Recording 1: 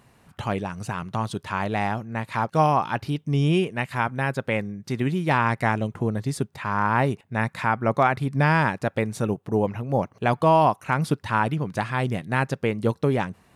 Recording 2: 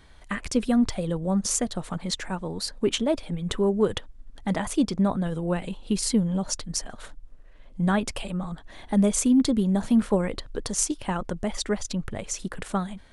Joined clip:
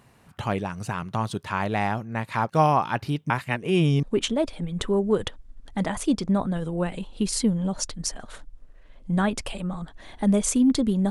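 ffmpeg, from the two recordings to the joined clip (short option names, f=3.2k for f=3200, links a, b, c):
-filter_complex "[0:a]apad=whole_dur=11.1,atrim=end=11.1,asplit=2[a][b];[a]atrim=end=3.302[c];[b]atrim=start=3.298:end=4.032,asetpts=PTS-STARTPTS,areverse[d];[1:a]atrim=start=2.728:end=9.8[e];[c][d]acrossfade=d=0.004:c1=hsin:c2=hsin[f];[f][e]acrossfade=d=0.004:c1=hsin:c2=hsin"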